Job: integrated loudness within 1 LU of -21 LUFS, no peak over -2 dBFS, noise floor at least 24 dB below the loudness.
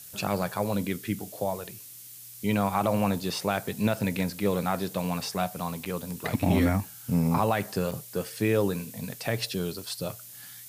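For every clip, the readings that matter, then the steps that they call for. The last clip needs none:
dropouts 2; longest dropout 6.0 ms; noise floor -46 dBFS; noise floor target -53 dBFS; loudness -29.0 LUFS; peak level -12.5 dBFS; loudness target -21.0 LUFS
-> interpolate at 5.85/7.91 s, 6 ms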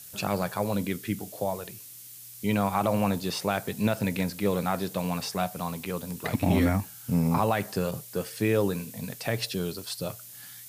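dropouts 0; noise floor -46 dBFS; noise floor target -53 dBFS
-> noise print and reduce 7 dB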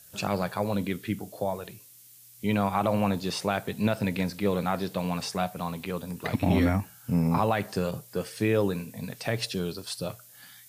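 noise floor -53 dBFS; loudness -29.0 LUFS; peak level -13.0 dBFS; loudness target -21.0 LUFS
-> trim +8 dB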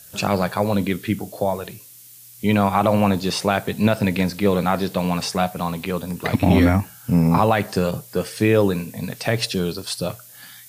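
loudness -21.0 LUFS; peak level -5.0 dBFS; noise floor -45 dBFS

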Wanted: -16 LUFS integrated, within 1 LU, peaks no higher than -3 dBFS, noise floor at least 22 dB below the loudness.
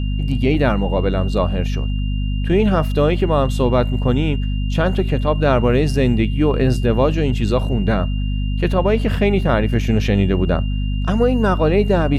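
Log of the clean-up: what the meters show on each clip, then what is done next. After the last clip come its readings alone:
hum 50 Hz; highest harmonic 250 Hz; hum level -17 dBFS; steady tone 2.8 kHz; tone level -37 dBFS; loudness -18.0 LUFS; peak level -4.0 dBFS; loudness target -16.0 LUFS
-> hum notches 50/100/150/200/250 Hz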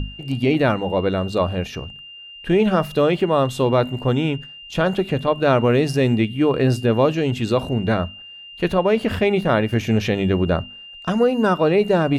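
hum not found; steady tone 2.8 kHz; tone level -37 dBFS
-> band-stop 2.8 kHz, Q 30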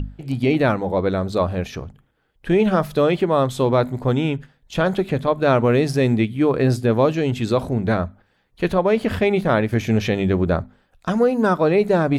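steady tone not found; loudness -20.0 LUFS; peak level -6.0 dBFS; loudness target -16.0 LUFS
-> trim +4 dB; peak limiter -3 dBFS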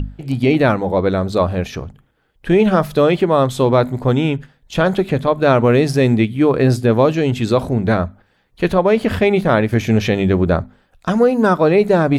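loudness -16.0 LUFS; peak level -3.0 dBFS; noise floor -60 dBFS

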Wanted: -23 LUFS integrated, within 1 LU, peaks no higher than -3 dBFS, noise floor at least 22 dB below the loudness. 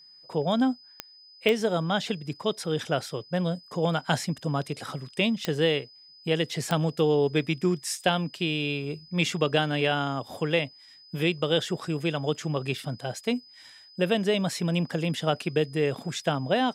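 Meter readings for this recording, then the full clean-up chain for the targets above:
clicks found 4; steady tone 5 kHz; tone level -50 dBFS; loudness -27.5 LUFS; peak level -8.0 dBFS; loudness target -23.0 LUFS
-> de-click; band-stop 5 kHz, Q 30; trim +4.5 dB

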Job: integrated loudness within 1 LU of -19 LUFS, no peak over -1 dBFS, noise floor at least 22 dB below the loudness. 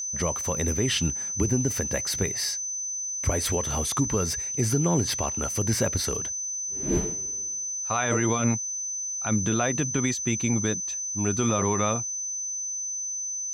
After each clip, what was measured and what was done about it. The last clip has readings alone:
tick rate 21 per s; steady tone 6.1 kHz; tone level -29 dBFS; loudness -26.0 LUFS; peak level -12.0 dBFS; loudness target -19.0 LUFS
-> de-click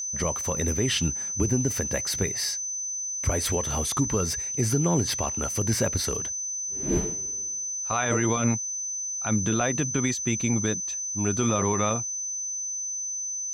tick rate 0.52 per s; steady tone 6.1 kHz; tone level -29 dBFS
-> band-stop 6.1 kHz, Q 30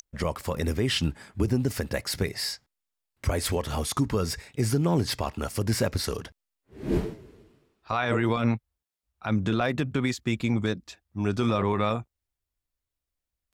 steady tone not found; loudness -28.0 LUFS; peak level -13.5 dBFS; loudness target -19.0 LUFS
-> trim +9 dB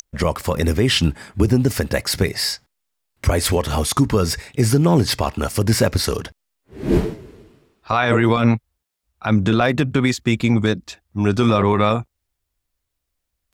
loudness -19.0 LUFS; peak level -4.5 dBFS; noise floor -78 dBFS

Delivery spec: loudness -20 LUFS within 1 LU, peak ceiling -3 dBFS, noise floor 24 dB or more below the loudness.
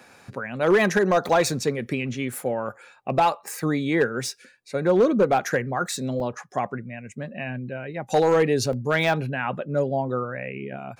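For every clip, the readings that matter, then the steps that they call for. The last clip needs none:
clipped samples 0.5%; clipping level -12.5 dBFS; dropouts 3; longest dropout 1.7 ms; loudness -24.0 LUFS; peak level -12.5 dBFS; loudness target -20.0 LUFS
-> clip repair -12.5 dBFS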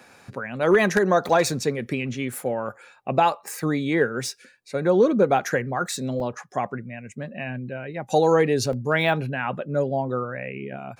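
clipped samples 0.0%; dropouts 3; longest dropout 1.7 ms
-> interpolate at 1.29/6.20/8.73 s, 1.7 ms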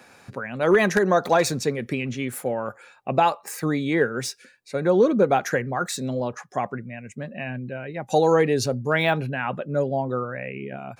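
dropouts 0; loudness -23.5 LUFS; peak level -5.0 dBFS; loudness target -20.0 LUFS
-> trim +3.5 dB; peak limiter -3 dBFS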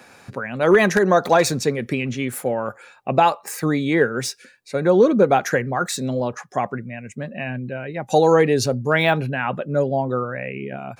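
loudness -20.0 LUFS; peak level -3.0 dBFS; noise floor -50 dBFS

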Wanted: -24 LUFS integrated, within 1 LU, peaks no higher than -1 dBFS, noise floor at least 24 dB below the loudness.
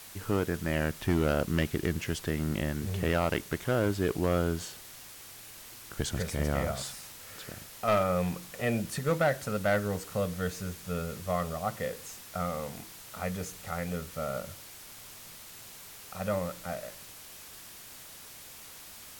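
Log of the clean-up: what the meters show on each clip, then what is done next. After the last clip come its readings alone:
clipped samples 0.5%; clipping level -19.5 dBFS; noise floor -48 dBFS; noise floor target -56 dBFS; loudness -32.0 LUFS; peak level -19.5 dBFS; loudness target -24.0 LUFS
-> clip repair -19.5 dBFS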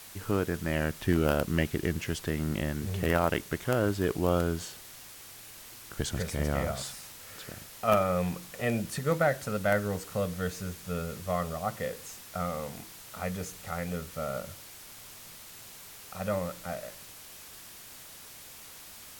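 clipped samples 0.0%; noise floor -48 dBFS; noise floor target -56 dBFS
-> noise reduction 8 dB, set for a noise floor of -48 dBFS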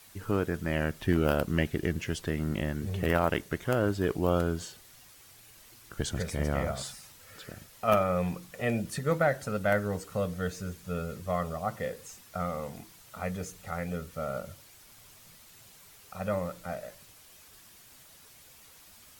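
noise floor -55 dBFS; noise floor target -56 dBFS
-> noise reduction 6 dB, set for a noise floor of -55 dBFS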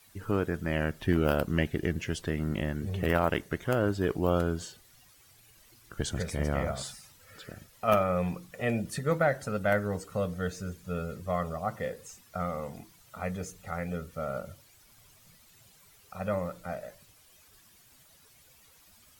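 noise floor -60 dBFS; loudness -31.5 LUFS; peak level -10.5 dBFS; loudness target -24.0 LUFS
-> trim +7.5 dB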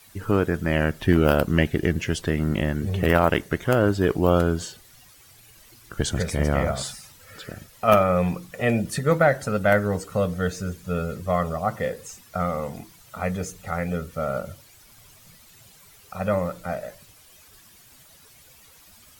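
loudness -24.0 LUFS; peak level -3.0 dBFS; noise floor -52 dBFS

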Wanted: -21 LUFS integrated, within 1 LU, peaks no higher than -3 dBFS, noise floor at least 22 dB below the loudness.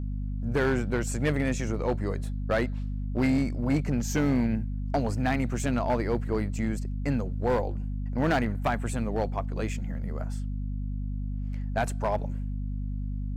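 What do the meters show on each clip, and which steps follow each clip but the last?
clipped samples 1.1%; clipping level -19.0 dBFS; hum 50 Hz; highest harmonic 250 Hz; hum level -29 dBFS; loudness -29.5 LUFS; peak level -19.0 dBFS; loudness target -21.0 LUFS
-> clip repair -19 dBFS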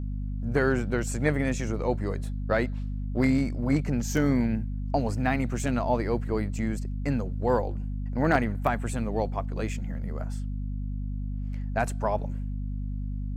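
clipped samples 0.0%; hum 50 Hz; highest harmonic 250 Hz; hum level -29 dBFS
-> de-hum 50 Hz, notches 5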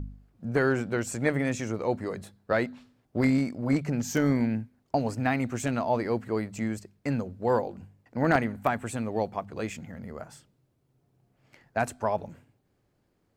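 hum not found; loudness -29.0 LUFS; peak level -10.0 dBFS; loudness target -21.0 LUFS
-> trim +8 dB; peak limiter -3 dBFS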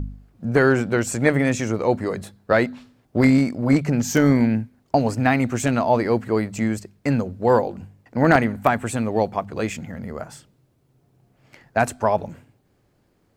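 loudness -21.0 LUFS; peak level -3.0 dBFS; noise floor -64 dBFS

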